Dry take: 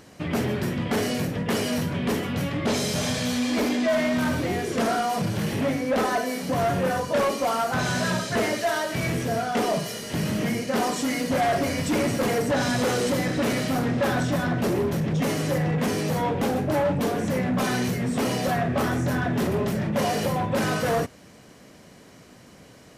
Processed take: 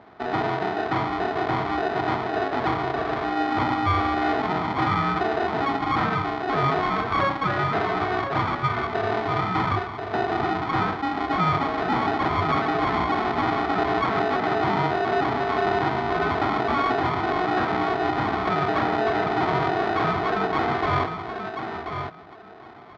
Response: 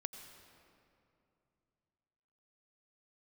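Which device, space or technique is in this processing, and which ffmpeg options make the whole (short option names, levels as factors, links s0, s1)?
ring modulator pedal into a guitar cabinet: -filter_complex "[0:a]lowpass=f=1400:w=0.5412,lowpass=f=1400:w=1.3066,asplit=2[s0][s1];[s1]adelay=1035,lowpass=f=2000:p=1,volume=0.447,asplit=2[s2][s3];[s3]adelay=1035,lowpass=f=2000:p=1,volume=0.17,asplit=2[s4][s5];[s5]adelay=1035,lowpass=f=2000:p=1,volume=0.17[s6];[s0][s2][s4][s6]amix=inputs=4:normalize=0,aeval=exprs='val(0)*sgn(sin(2*PI*550*n/s))':c=same,highpass=99,equalizer=f=100:t=q:w=4:g=6,equalizer=f=610:t=q:w=4:g=6,equalizer=f=1300:t=q:w=4:g=3,equalizer=f=2800:t=q:w=4:g=-8,lowpass=f=3600:w=0.5412,lowpass=f=3600:w=1.3066"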